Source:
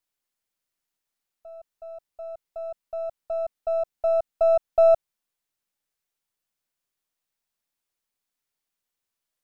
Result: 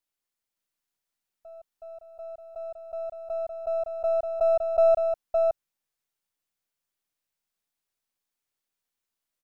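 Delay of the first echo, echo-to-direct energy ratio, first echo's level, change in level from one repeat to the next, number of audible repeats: 563 ms, −4.0 dB, −4.0 dB, repeats not evenly spaced, 1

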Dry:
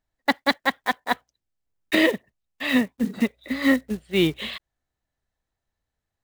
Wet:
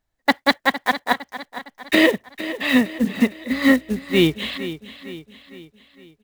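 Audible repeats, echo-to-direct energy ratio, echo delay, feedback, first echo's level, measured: 4, −12.5 dB, 459 ms, 49%, −13.5 dB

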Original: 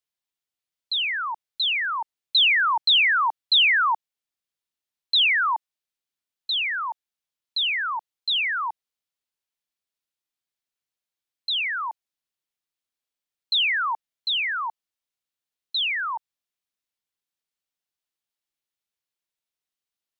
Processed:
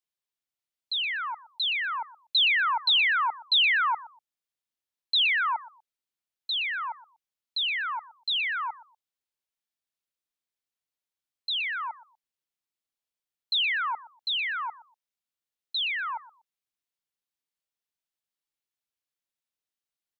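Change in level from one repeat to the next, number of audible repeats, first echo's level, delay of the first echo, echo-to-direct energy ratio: −13.0 dB, 2, −18.0 dB, 121 ms, −18.0 dB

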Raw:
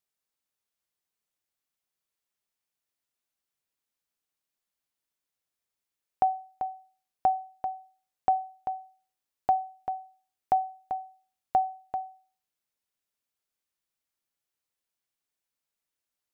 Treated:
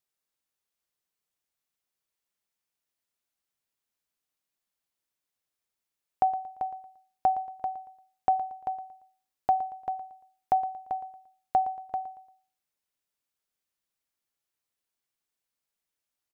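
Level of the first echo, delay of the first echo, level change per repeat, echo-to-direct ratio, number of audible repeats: −15.0 dB, 115 ms, −9.0 dB, −14.5 dB, 3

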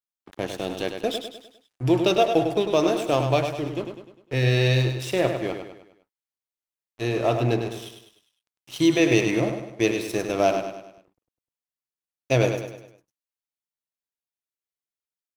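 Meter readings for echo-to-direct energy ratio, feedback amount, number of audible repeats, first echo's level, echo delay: −6.0 dB, 46%, 5, −7.0 dB, 101 ms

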